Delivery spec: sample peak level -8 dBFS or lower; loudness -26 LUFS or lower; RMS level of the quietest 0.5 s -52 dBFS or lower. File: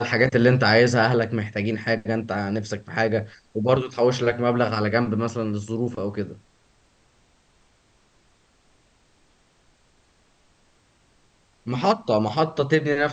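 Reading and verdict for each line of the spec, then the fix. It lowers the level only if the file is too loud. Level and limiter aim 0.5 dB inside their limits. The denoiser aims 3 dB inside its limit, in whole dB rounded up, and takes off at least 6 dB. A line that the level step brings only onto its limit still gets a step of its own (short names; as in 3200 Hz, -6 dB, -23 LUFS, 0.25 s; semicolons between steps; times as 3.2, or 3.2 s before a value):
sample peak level -4.5 dBFS: fail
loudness -22.5 LUFS: fail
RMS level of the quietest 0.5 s -61 dBFS: OK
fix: gain -4 dB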